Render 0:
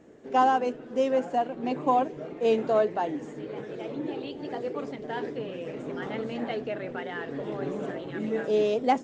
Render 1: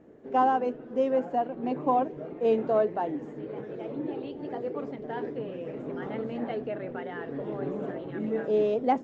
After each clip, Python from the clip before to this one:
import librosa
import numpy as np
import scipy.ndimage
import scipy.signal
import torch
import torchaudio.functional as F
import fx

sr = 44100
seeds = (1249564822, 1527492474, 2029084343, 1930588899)

y = fx.lowpass(x, sr, hz=1200.0, slope=6)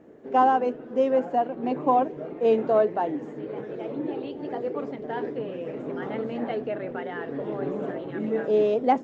y = fx.low_shelf(x, sr, hz=130.0, db=-7.0)
y = y * librosa.db_to_amplitude(4.0)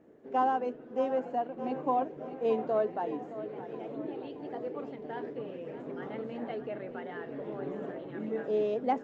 y = fx.echo_feedback(x, sr, ms=618, feedback_pct=53, wet_db=-13)
y = y * librosa.db_to_amplitude(-8.0)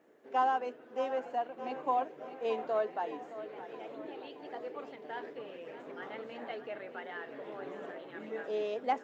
y = fx.highpass(x, sr, hz=1300.0, slope=6)
y = y * librosa.db_to_amplitude(4.5)